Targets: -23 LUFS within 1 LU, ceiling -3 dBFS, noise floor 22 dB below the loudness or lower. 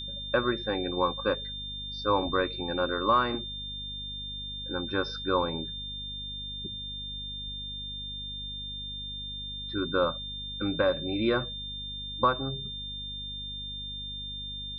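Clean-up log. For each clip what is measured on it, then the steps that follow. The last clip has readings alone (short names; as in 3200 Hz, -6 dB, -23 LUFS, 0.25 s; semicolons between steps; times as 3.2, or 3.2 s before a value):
hum 50 Hz; harmonics up to 250 Hz; hum level -41 dBFS; steady tone 3600 Hz; tone level -36 dBFS; loudness -31.0 LUFS; peak -13.0 dBFS; loudness target -23.0 LUFS
-> de-hum 50 Hz, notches 5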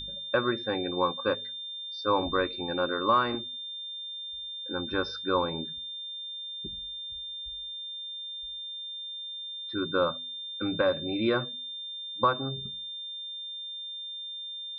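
hum none; steady tone 3600 Hz; tone level -36 dBFS
-> notch 3600 Hz, Q 30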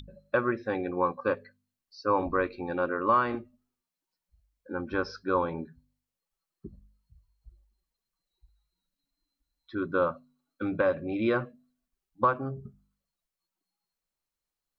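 steady tone none; loudness -29.5 LUFS; peak -13.5 dBFS; loudness target -23.0 LUFS
-> gain +6.5 dB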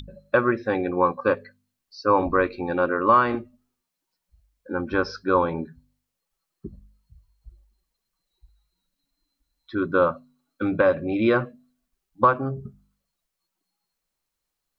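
loudness -23.0 LUFS; peak -7.0 dBFS; noise floor -83 dBFS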